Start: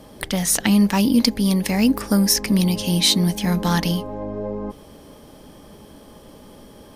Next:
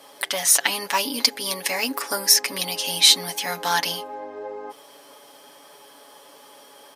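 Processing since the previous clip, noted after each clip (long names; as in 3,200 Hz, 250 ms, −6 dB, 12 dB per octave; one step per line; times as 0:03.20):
high-pass filter 730 Hz 12 dB per octave
comb filter 7.1 ms, depth 72%
level +1.5 dB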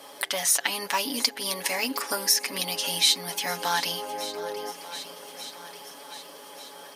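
feedback echo with a long and a short gap by turns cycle 1,188 ms, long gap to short 1.5 to 1, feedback 46%, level −19 dB
downward compressor 1.5 to 1, threshold −35 dBFS, peak gain reduction 9 dB
level +2 dB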